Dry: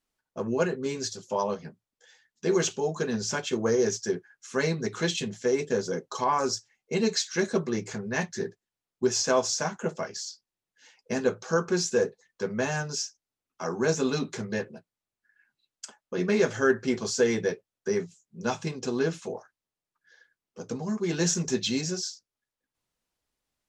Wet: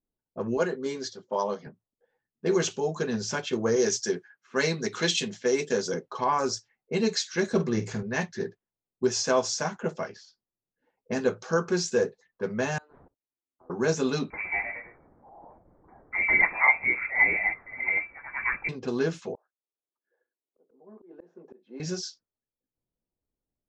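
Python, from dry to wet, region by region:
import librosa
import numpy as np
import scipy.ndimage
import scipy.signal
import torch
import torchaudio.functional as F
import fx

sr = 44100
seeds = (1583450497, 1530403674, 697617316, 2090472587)

y = fx.chain(x, sr, fx.highpass(hz=210.0, slope=12),
    fx.notch(hz=2600.0, q=6.3), at=(0.57, 1.67))
y = fx.chain(y, sr, fx.highpass(hz=150.0, slope=12),
    fx.high_shelf(hz=2100.0, db=7.0), at=(3.76, 5.94))
y = fx.chain(y, sr, fx.low_shelf(hz=140.0, db=9.0),
    fx.doubler(ms=46.0, db=-11), at=(7.51, 8.03))
y = fx.chain(y, sr, fx.level_steps(step_db=23),
    fx.cheby_ripple_highpass(hz=250.0, ripple_db=9),
    fx.resample_linear(factor=8), at=(12.78, 13.7))
y = fx.chain(y, sr, fx.crossing_spikes(level_db=-28.0),
    fx.echo_pitch(ms=120, semitones=1, count=3, db_per_echo=-6.0),
    fx.freq_invert(carrier_hz=2500), at=(14.3, 18.69))
y = fx.chain(y, sr, fx.highpass(hz=320.0, slope=24),
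    fx.high_shelf(hz=2700.0, db=-8.5),
    fx.auto_swell(attack_ms=551.0), at=(19.35, 21.8))
y = fx.env_lowpass(y, sr, base_hz=470.0, full_db=-25.5)
y = scipy.signal.sosfilt(scipy.signal.butter(2, 7000.0, 'lowpass', fs=sr, output='sos'), y)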